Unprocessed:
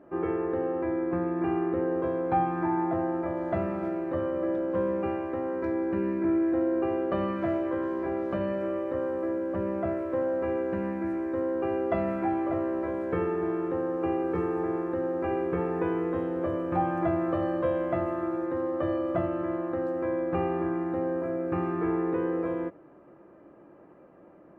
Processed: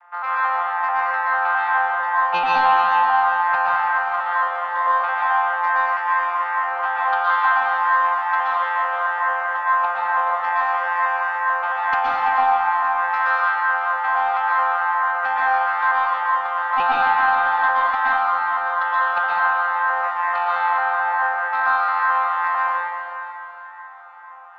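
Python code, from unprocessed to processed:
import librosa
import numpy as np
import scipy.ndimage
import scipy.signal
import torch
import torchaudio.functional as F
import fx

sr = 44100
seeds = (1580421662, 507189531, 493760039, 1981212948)

p1 = fx.vocoder_arp(x, sr, chord='bare fifth', root=53, every_ms=221)
p2 = scipy.signal.sosfilt(scipy.signal.butter(8, 890.0, 'highpass', fs=sr, output='sos'), p1)
p3 = fx.high_shelf(p2, sr, hz=2500.0, db=-7.5)
p4 = fx.rider(p3, sr, range_db=4, speed_s=0.5)
p5 = p3 + F.gain(torch.from_numpy(p4), -3.0).numpy()
p6 = fx.fold_sine(p5, sr, drive_db=8, ceiling_db=-23.5)
p7 = fx.echo_diffused(p6, sr, ms=469, feedback_pct=40, wet_db=-11)
p8 = fx.rev_plate(p7, sr, seeds[0], rt60_s=1.5, hf_ratio=0.9, predelay_ms=105, drr_db=-4.5)
y = F.gain(torch.from_numpy(p8), 5.5).numpy()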